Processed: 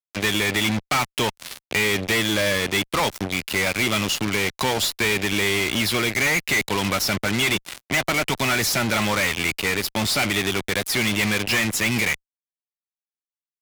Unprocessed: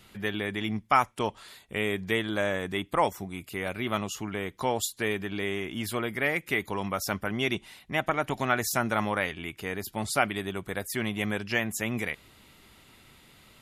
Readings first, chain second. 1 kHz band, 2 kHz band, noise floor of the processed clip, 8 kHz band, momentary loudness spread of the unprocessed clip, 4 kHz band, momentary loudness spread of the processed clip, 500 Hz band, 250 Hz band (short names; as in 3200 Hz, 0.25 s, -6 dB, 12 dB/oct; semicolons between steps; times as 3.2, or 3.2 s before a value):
+2.5 dB, +9.5 dB, under -85 dBFS, +12.0 dB, 8 LU, +14.0 dB, 4 LU, +4.5 dB, +6.5 dB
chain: band shelf 3300 Hz +9 dB; fuzz box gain 38 dB, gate -36 dBFS; three-band squash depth 40%; gain -5 dB